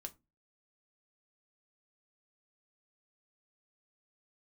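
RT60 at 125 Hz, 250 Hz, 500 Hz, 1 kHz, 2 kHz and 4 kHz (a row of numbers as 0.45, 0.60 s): 0.45, 0.35, 0.25, 0.20, 0.20, 0.15 s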